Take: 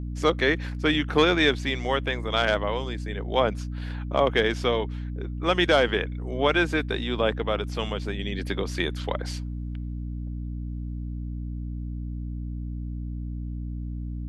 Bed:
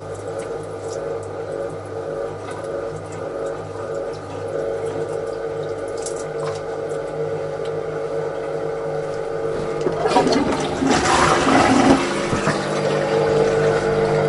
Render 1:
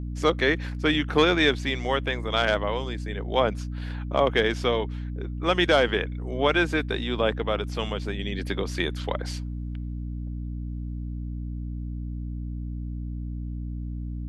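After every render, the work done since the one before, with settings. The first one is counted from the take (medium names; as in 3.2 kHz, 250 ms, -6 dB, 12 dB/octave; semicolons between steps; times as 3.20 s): no audible change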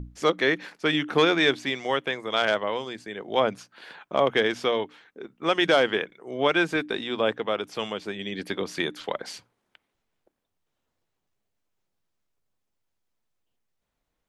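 hum notches 60/120/180/240/300 Hz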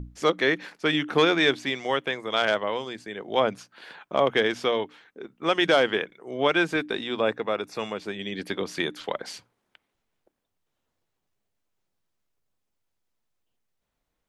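7.20–7.99 s: Butterworth band-stop 3.1 kHz, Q 6.1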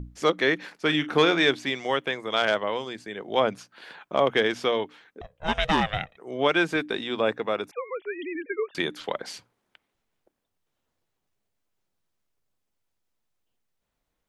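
0.80–1.44 s: doubling 40 ms -13.5 dB; 5.21–6.17 s: ring modulator 310 Hz; 7.71–8.75 s: formants replaced by sine waves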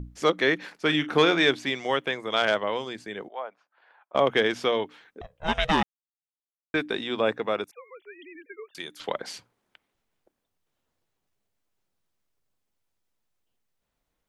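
3.28–4.15 s: ladder band-pass 990 Hz, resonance 25%; 5.83–6.74 s: mute; 7.64–9.00 s: pre-emphasis filter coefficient 0.8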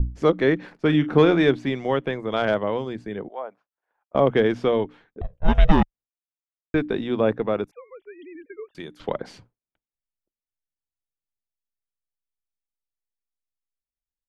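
expander -47 dBFS; tilt EQ -4 dB/octave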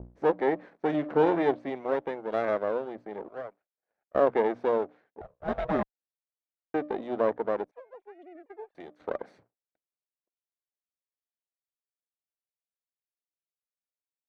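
comb filter that takes the minimum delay 0.5 ms; band-pass filter 660 Hz, Q 1.4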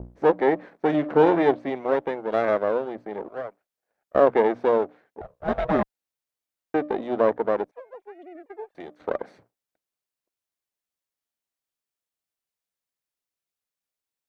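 trim +5.5 dB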